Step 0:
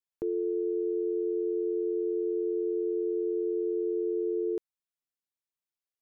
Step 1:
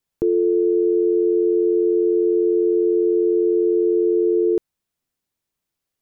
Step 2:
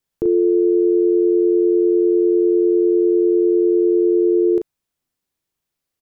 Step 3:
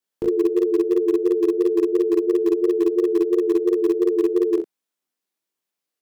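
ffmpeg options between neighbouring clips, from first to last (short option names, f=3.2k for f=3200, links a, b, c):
-filter_complex "[0:a]lowshelf=f=400:g=10,asplit=2[a][b];[b]alimiter=level_in=4.5dB:limit=-24dB:level=0:latency=1:release=10,volume=-4.5dB,volume=0dB[c];[a][c]amix=inputs=2:normalize=0,volume=4.5dB"
-filter_complex "[0:a]asplit=2[a][b];[b]adelay=37,volume=-5.5dB[c];[a][c]amix=inputs=2:normalize=0"
-filter_complex "[0:a]flanger=delay=18.5:depth=5.9:speed=2.9,acrossover=split=190[a][b];[a]acrusher=bits=5:mix=0:aa=0.000001[c];[c][b]amix=inputs=2:normalize=0"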